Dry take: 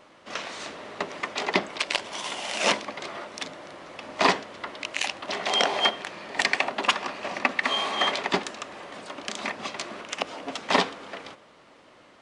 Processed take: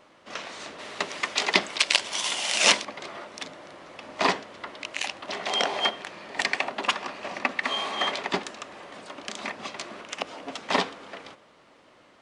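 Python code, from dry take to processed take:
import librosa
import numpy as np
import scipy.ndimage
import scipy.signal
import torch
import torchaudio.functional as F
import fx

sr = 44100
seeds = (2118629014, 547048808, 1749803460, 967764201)

y = fx.high_shelf(x, sr, hz=2000.0, db=12.0, at=(0.78, 2.83), fade=0.02)
y = y * librosa.db_to_amplitude(-2.5)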